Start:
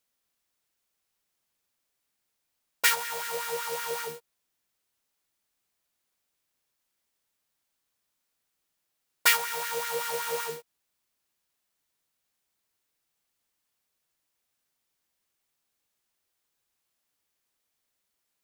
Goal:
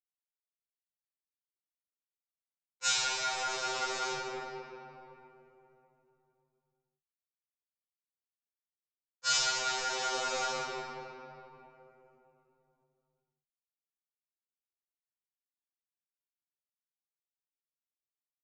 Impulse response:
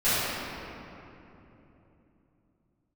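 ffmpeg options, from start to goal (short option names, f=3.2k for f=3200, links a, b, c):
-filter_complex "[0:a]agate=range=-13dB:threshold=-36dB:ratio=16:detection=peak,equalizer=f=1.8k:t=o:w=2.7:g=-6.5,acrossover=split=670|3900[a][b][c];[b]acompressor=threshold=-42dB:ratio=6[d];[a][d][c]amix=inputs=3:normalize=0,aeval=exprs='val(0)+0.000631*sin(2*PI*770*n/s)':c=same,aresample=16000,aeval=exprs='sgn(val(0))*max(abs(val(0))-0.00141,0)':c=same,aresample=44100[e];[1:a]atrim=start_sample=2205[f];[e][f]afir=irnorm=-1:irlink=0,afftfilt=real='re*2.45*eq(mod(b,6),0)':imag='im*2.45*eq(mod(b,6),0)':win_size=2048:overlap=0.75,volume=-3dB"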